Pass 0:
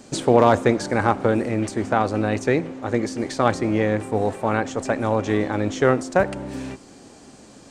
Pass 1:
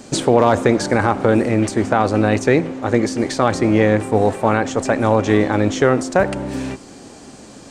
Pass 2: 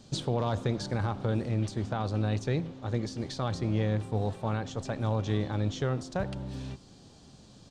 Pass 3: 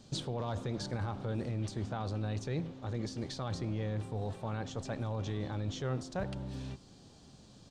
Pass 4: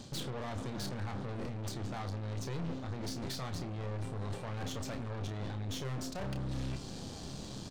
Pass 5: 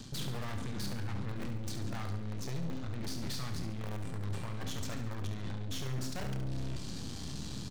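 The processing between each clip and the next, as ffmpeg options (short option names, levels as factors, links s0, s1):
-af "alimiter=level_in=2.37:limit=0.891:release=50:level=0:latency=1,volume=0.891"
-af "firequalizer=gain_entry='entry(150,0);entry(260,-12);entry(1100,-11);entry(2100,-15);entry(3500,-2);entry(7900,-14)':delay=0.05:min_phase=1,volume=0.473"
-af "alimiter=limit=0.0631:level=0:latency=1:release=10,volume=0.708"
-filter_complex "[0:a]areverse,acompressor=threshold=0.00708:ratio=6,areverse,aeval=exprs='(tanh(447*val(0)+0.55)-tanh(0.55))/447':c=same,asplit=2[s0][s1];[s1]adelay=30,volume=0.398[s2];[s0][s2]amix=inputs=2:normalize=0,volume=5.96"
-filter_complex "[0:a]acrossover=split=370|850|4300[s0][s1][s2][s3];[s1]acrusher=bits=6:mix=0:aa=0.000001[s4];[s0][s4][s2][s3]amix=inputs=4:normalize=0,aeval=exprs='(tanh(112*val(0)+0.7)-tanh(0.7))/112':c=same,aecho=1:1:70|140|210|280|350:0.398|0.187|0.0879|0.0413|0.0194,volume=1.78"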